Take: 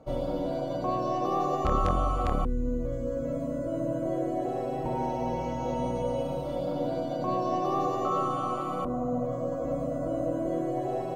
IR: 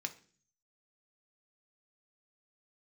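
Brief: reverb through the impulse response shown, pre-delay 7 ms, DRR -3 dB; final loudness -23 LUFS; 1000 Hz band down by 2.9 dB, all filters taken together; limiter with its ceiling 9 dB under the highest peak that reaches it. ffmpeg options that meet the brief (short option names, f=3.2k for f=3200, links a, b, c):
-filter_complex "[0:a]equalizer=f=1k:t=o:g=-4,alimiter=limit=-24dB:level=0:latency=1,asplit=2[a][b];[1:a]atrim=start_sample=2205,adelay=7[c];[b][c]afir=irnorm=-1:irlink=0,volume=3.5dB[d];[a][d]amix=inputs=2:normalize=0,volume=6.5dB"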